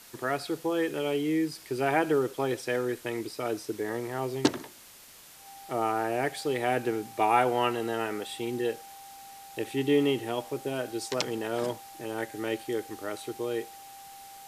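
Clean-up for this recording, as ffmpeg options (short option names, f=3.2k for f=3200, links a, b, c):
-af "bandreject=f=790:w=30,afwtdn=0.0032"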